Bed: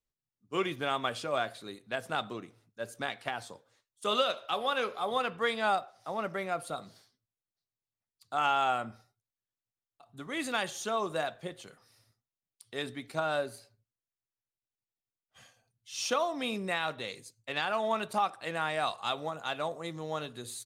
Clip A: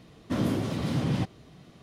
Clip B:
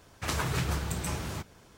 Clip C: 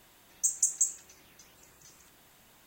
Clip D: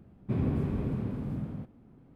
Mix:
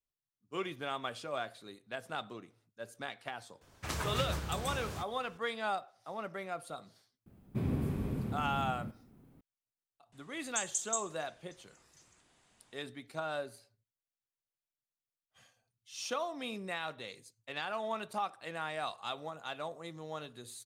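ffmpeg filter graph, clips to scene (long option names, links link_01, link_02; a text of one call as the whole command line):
ffmpeg -i bed.wav -i cue0.wav -i cue1.wav -i cue2.wav -i cue3.wav -filter_complex "[0:a]volume=-6.5dB[link_01];[4:a]aemphasis=mode=production:type=75fm[link_02];[3:a]aresample=22050,aresample=44100[link_03];[2:a]atrim=end=1.77,asetpts=PTS-STARTPTS,volume=-6dB,afade=type=in:duration=0.004:curve=hsin,afade=type=out:start_time=1.766:duration=0.004:curve=hsin,adelay=159201S[link_04];[link_02]atrim=end=2.15,asetpts=PTS-STARTPTS,volume=-3.5dB,afade=type=in:duration=0.004:curve=hsin,afade=type=out:start_time=2.146:duration=0.004:curve=hsin,adelay=7260[link_05];[link_03]atrim=end=2.66,asetpts=PTS-STARTPTS,volume=-8dB,afade=type=in:duration=0.004:curve=hsin,afade=type=out:start_time=2.656:duration=0.004:curve=hsin,adelay=10120[link_06];[link_01][link_04][link_05][link_06]amix=inputs=4:normalize=0" out.wav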